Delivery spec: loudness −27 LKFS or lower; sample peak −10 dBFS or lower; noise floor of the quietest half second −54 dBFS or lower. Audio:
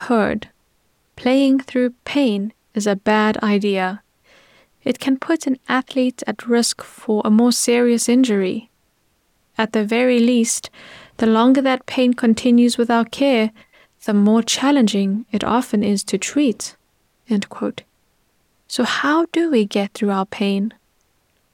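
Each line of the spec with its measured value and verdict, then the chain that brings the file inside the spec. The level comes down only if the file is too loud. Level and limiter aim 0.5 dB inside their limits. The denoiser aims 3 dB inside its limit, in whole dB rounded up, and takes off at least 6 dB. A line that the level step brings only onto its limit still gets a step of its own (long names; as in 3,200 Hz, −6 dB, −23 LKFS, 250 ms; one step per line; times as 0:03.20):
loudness −18.0 LKFS: out of spec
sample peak −5.5 dBFS: out of spec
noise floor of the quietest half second −64 dBFS: in spec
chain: level −9.5 dB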